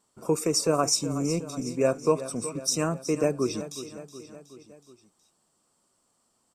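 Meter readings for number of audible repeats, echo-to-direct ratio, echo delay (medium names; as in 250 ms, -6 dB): 4, -11.5 dB, 370 ms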